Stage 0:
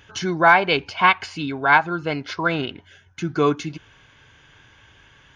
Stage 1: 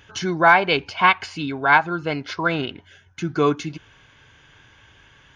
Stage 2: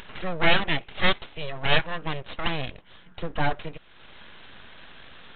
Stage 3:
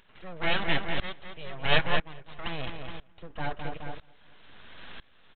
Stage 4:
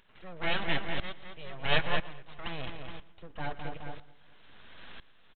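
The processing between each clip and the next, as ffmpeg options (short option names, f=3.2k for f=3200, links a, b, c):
-af anull
-af "acompressor=mode=upward:threshold=-30dB:ratio=2.5,aresample=8000,aeval=exprs='abs(val(0))':c=same,aresample=44100,volume=-3dB"
-filter_complex "[0:a]asplit=2[a][b];[b]adelay=211,lowpass=f=3.1k:p=1,volume=-10dB,asplit=2[c][d];[d]adelay=211,lowpass=f=3.1k:p=1,volume=0.49,asplit=2[e][f];[f]adelay=211,lowpass=f=3.1k:p=1,volume=0.49,asplit=2[g][h];[h]adelay=211,lowpass=f=3.1k:p=1,volume=0.49,asplit=2[i][j];[j]adelay=211,lowpass=f=3.1k:p=1,volume=0.49[k];[a][c][e][g][i][k]amix=inputs=6:normalize=0,aeval=exprs='val(0)*pow(10,-22*if(lt(mod(-1*n/s,1),2*abs(-1)/1000),1-mod(-1*n/s,1)/(2*abs(-1)/1000),(mod(-1*n/s,1)-2*abs(-1)/1000)/(1-2*abs(-1)/1000))/20)':c=same,volume=3.5dB"
-af "aecho=1:1:116|232|348:0.112|0.0438|0.0171,volume=-3.5dB"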